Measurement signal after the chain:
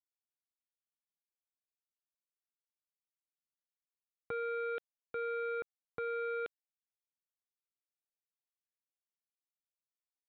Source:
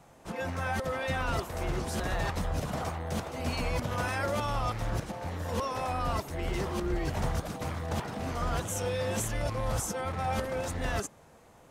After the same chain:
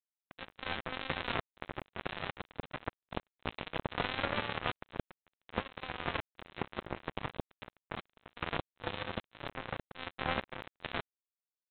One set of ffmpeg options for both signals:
-af "highpass=f=96:w=0.5412,highpass=f=96:w=1.3066,aresample=8000,acrusher=bits=3:mix=0:aa=0.5,aresample=44100,volume=1.33"

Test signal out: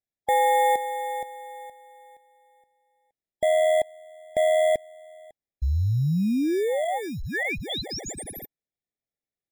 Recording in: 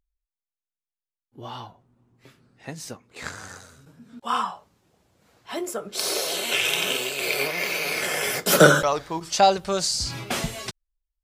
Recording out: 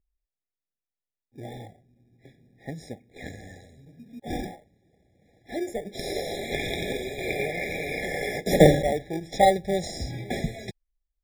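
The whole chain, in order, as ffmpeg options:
-filter_complex "[0:a]lowpass=f=2900:p=1,asplit=2[s0][s1];[s1]acrusher=samples=33:mix=1:aa=0.000001,volume=0.596[s2];[s0][s2]amix=inputs=2:normalize=0,afftfilt=real='re*eq(mod(floor(b*sr/1024/820),2),0)':imag='im*eq(mod(floor(b*sr/1024/820),2),0)':win_size=1024:overlap=0.75,volume=0.75"

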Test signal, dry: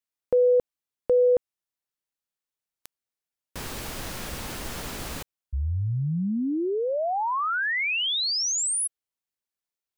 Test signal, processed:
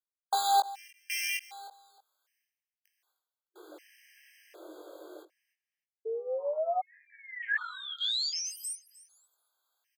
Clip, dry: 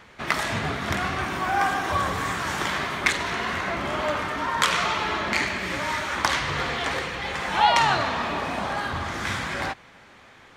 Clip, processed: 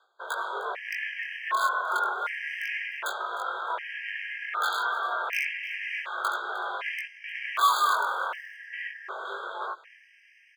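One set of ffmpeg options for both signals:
-filter_complex "[0:a]afwtdn=0.0398,equalizer=f=13000:w=3.2:g=8,areverse,acompressor=mode=upward:threshold=0.0141:ratio=2.5:attack=0.11:release=244:knee=2.83:detection=peak,areverse,afreqshift=300,highshelf=f=3900:g=-10,asplit=2[s0][s1];[s1]aeval=exprs='(mod(6.31*val(0)+1,2)-1)/6.31':c=same,volume=0.596[s2];[s0][s2]amix=inputs=2:normalize=0,aecho=1:1:306|612:0.106|0.0244,flanger=delay=19:depth=3.2:speed=0.3,highpass=800,afftfilt=real='re*gt(sin(2*PI*0.66*pts/sr)*(1-2*mod(floor(b*sr/1024/1600),2)),0)':imag='im*gt(sin(2*PI*0.66*pts/sr)*(1-2*mod(floor(b*sr/1024/1600),2)),0)':win_size=1024:overlap=0.75"

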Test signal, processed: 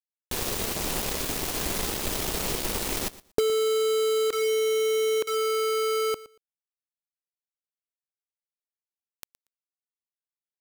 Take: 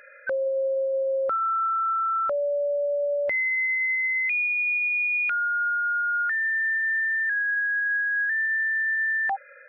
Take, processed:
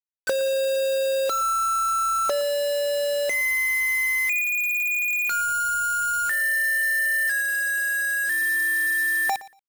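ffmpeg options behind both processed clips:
-af "equalizer=f=100:t=o:w=0.67:g=-7,equalizer=f=400:t=o:w=0.67:g=5,equalizer=f=1600:t=o:w=0.67:g=-7,acompressor=threshold=0.0316:ratio=8,acrusher=bits=5:mix=0:aa=0.000001,aecho=1:1:117|234:0.119|0.0214,volume=2.51"

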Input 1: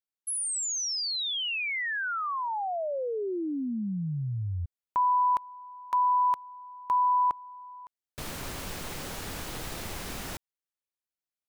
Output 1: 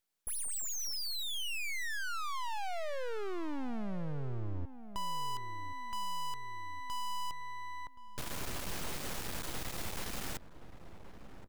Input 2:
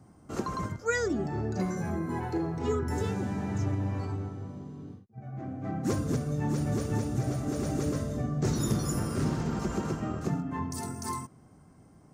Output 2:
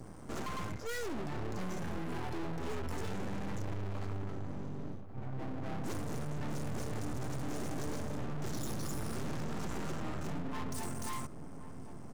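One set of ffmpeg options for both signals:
-filter_complex "[0:a]aeval=exprs='max(val(0),0)':c=same,aeval=exprs='(tanh(63.1*val(0)+0.65)-tanh(0.65))/63.1':c=same,asplit=2[s0][s1];[s1]adelay=1074,lowpass=f=950:p=1,volume=0.224,asplit=2[s2][s3];[s3]adelay=1074,lowpass=f=950:p=1,volume=0.43,asplit=2[s4][s5];[s5]adelay=1074,lowpass=f=950:p=1,volume=0.43,asplit=2[s6][s7];[s7]adelay=1074,lowpass=f=950:p=1,volume=0.43[s8];[s0][s2][s4][s6][s8]amix=inputs=5:normalize=0,asplit=2[s9][s10];[s10]acompressor=threshold=0.00112:ratio=6:release=666:detection=peak,volume=1[s11];[s9][s11]amix=inputs=2:normalize=0,volume=2.99"

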